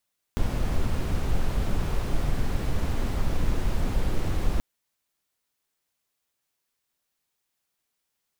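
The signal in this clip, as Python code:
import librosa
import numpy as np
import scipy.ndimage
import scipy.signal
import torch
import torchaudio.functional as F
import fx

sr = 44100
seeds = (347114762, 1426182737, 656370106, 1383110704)

y = fx.noise_colour(sr, seeds[0], length_s=4.23, colour='brown', level_db=-23.0)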